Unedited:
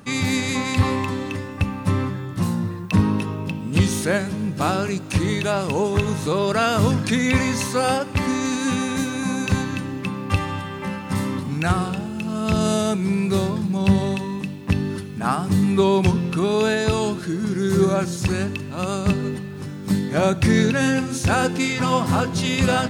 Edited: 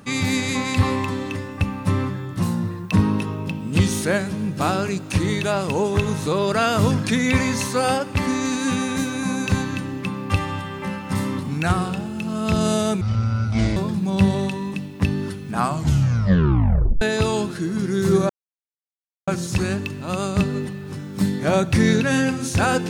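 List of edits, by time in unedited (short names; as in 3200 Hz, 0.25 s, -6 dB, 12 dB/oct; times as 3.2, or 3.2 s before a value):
13.01–13.44 speed 57%
15.24 tape stop 1.45 s
17.97 insert silence 0.98 s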